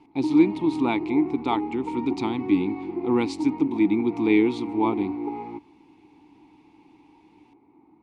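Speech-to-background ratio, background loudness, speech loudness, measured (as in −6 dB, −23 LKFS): 7.0 dB, −31.5 LKFS, −24.5 LKFS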